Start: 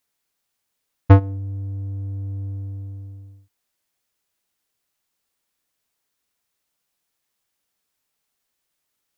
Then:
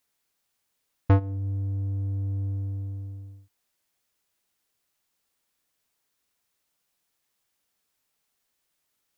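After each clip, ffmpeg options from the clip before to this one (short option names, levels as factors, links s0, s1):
-af "alimiter=limit=0.211:level=0:latency=1:release=361"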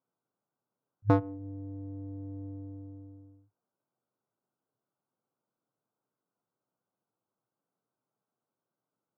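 -af "afftfilt=real='re*between(b*sr/4096,100,1600)':imag='im*between(b*sr/4096,100,1600)':win_size=4096:overlap=0.75,adynamicsmooth=sensitivity=2.5:basefreq=1100,volume=1.19"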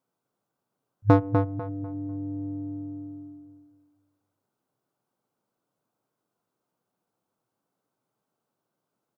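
-filter_complex "[0:a]asplit=2[s0][s1];[s1]adelay=248,lowpass=f=2600:p=1,volume=0.562,asplit=2[s2][s3];[s3]adelay=248,lowpass=f=2600:p=1,volume=0.33,asplit=2[s4][s5];[s5]adelay=248,lowpass=f=2600:p=1,volume=0.33,asplit=2[s6][s7];[s7]adelay=248,lowpass=f=2600:p=1,volume=0.33[s8];[s0][s2][s4][s6][s8]amix=inputs=5:normalize=0,volume=2"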